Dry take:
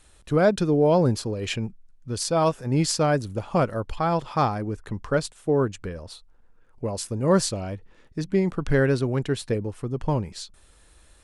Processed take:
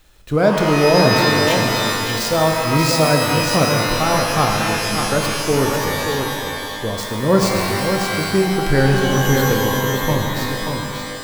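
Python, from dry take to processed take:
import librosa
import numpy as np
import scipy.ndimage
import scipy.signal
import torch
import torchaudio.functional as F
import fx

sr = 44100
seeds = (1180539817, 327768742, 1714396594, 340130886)

y = scipy.ndimage.median_filter(x, 5, mode='constant')
y = fx.high_shelf(y, sr, hz=5700.0, db=9.0)
y = y + 10.0 ** (-6.0 / 20.0) * np.pad(y, (int(584 * sr / 1000.0), 0))[:len(y)]
y = fx.rev_shimmer(y, sr, seeds[0], rt60_s=2.2, semitones=12, shimmer_db=-2, drr_db=2.5)
y = y * 10.0 ** (3.0 / 20.0)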